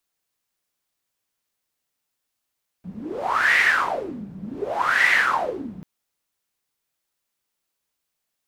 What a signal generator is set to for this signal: wind-like swept noise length 2.99 s, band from 180 Hz, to 2 kHz, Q 9.2, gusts 2, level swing 19.5 dB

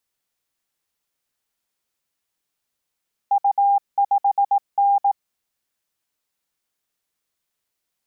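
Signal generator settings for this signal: Morse "U5N" 18 wpm 802 Hz -13.5 dBFS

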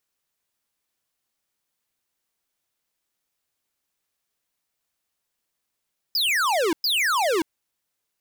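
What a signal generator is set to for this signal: burst of laser zaps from 5.2 kHz, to 300 Hz, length 0.58 s square, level -21.5 dB, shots 2, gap 0.11 s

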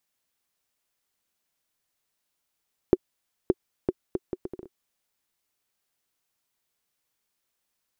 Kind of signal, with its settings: bouncing ball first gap 0.57 s, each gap 0.68, 369 Hz, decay 39 ms -5 dBFS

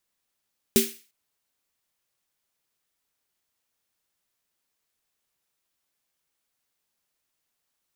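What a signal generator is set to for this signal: snare drum length 0.35 s, tones 230 Hz, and 390 Hz, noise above 1.9 kHz, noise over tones -3 dB, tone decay 0.25 s, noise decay 0.39 s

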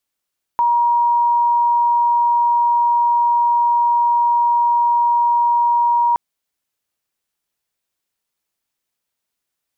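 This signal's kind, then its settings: tone sine 950 Hz -12 dBFS 5.57 s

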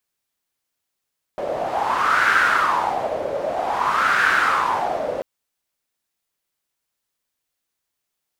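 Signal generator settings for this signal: wind-like swept noise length 3.84 s, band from 560 Hz, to 1.5 kHz, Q 5.8, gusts 2, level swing 8.5 dB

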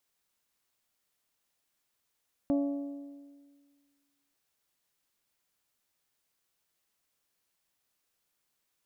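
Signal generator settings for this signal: metal hit bell, length 1.84 s, lowest mode 283 Hz, decay 1.73 s, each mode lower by 8 dB, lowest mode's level -23.5 dB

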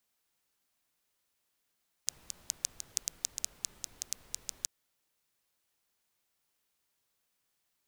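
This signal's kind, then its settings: rain from filtered ticks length 2.59 s, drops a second 6.7, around 6.4 kHz, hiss -18.5 dB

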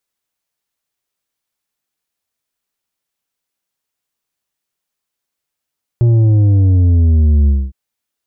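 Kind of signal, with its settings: sub drop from 120 Hz, over 1.71 s, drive 7 dB, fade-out 0.24 s, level -8 dB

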